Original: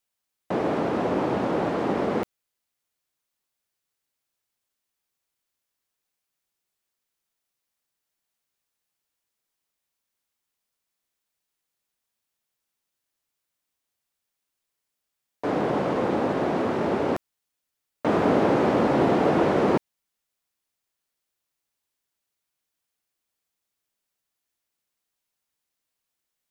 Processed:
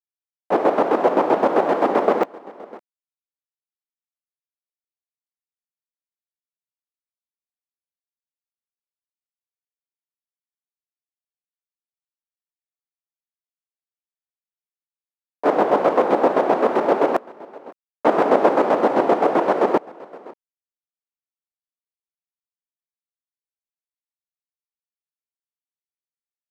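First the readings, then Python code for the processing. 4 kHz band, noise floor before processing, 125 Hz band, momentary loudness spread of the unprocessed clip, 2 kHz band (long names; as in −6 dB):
+0.5 dB, −83 dBFS, −8.5 dB, 8 LU, +4.0 dB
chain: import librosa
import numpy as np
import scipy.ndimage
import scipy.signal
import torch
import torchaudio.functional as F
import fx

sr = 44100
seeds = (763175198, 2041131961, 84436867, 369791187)

y = fx.tracing_dist(x, sr, depth_ms=0.1)
y = fx.quant_dither(y, sr, seeds[0], bits=10, dither='none')
y = y + 10.0 ** (-21.0 / 20.0) * np.pad(y, (int(559 * sr / 1000.0), 0))[:len(y)]
y = fx.chopper(y, sr, hz=7.7, depth_pct=60, duty_pct=35)
y = fx.peak_eq(y, sr, hz=740.0, db=11.0, octaves=2.8)
y = fx.rider(y, sr, range_db=10, speed_s=2.0)
y = scipy.signal.sosfilt(scipy.signal.butter(2, 250.0, 'highpass', fs=sr, output='sos'), y)
y = F.gain(torch.from_numpy(y), 1.0).numpy()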